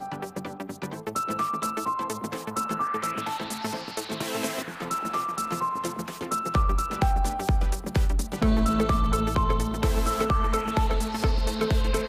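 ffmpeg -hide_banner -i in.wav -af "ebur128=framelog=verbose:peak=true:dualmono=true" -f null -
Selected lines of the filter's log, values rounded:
Integrated loudness:
  I:         -24.4 LUFS
  Threshold: -34.4 LUFS
Loudness range:
  LRA:         5.0 LU
  Threshold: -44.3 LUFS
  LRA low:   -27.1 LUFS
  LRA high:  -22.1 LUFS
True peak:
  Peak:      -11.8 dBFS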